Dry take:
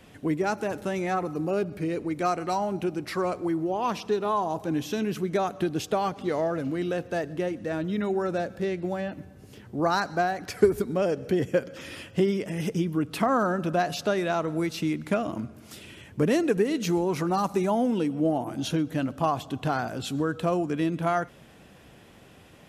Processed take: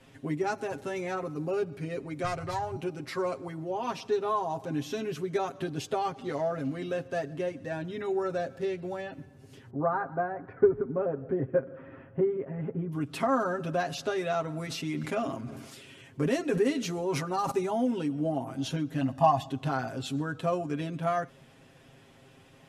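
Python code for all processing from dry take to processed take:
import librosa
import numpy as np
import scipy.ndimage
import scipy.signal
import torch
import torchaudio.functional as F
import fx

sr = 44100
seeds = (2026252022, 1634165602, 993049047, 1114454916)

y = fx.chain(x, sr, fx.self_delay(depth_ms=0.14),
    fx.low_shelf_res(hz=150.0, db=14.0, q=3.0), at=(2.24, 2.76))
y = fx.chain(y, sr, fx.lowpass(hz=1500.0, slope=24),
    fx.echo_single(ms=163, db=-21.5), at=(9.7, 12.92))
y = fx.chain(y, sr, fx.low_shelf(hz=87.0, db=-10.0),
    fx.sustainer(db_per_s=44.0), at=(14.67, 17.51))
y = fx.chain(y, sr, fx.peak_eq(hz=700.0, db=6.5, octaves=0.55),
    fx.comb(ms=1.1, depth=0.67), at=(19.01, 19.49))
y = scipy.signal.sosfilt(scipy.signal.butter(2, 11000.0, 'lowpass', fs=sr, output='sos'), y)
y = y + 0.92 * np.pad(y, (int(7.5 * sr / 1000.0), 0))[:len(y)]
y = F.gain(torch.from_numpy(y), -6.5).numpy()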